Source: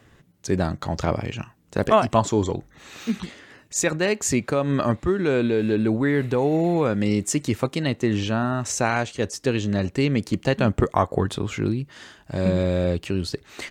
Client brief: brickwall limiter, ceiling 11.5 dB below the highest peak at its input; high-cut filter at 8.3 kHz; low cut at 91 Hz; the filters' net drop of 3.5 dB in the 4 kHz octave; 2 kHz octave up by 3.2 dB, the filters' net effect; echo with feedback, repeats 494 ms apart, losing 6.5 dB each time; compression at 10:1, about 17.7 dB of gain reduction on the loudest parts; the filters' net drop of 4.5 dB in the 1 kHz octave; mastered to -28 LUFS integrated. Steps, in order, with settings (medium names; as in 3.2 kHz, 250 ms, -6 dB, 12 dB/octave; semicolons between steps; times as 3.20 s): high-pass 91 Hz; low-pass 8.3 kHz; peaking EQ 1 kHz -8 dB; peaking EQ 2 kHz +8.5 dB; peaking EQ 4 kHz -8 dB; compression 10:1, threshold -35 dBFS; peak limiter -32 dBFS; feedback delay 494 ms, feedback 47%, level -6.5 dB; trim +14 dB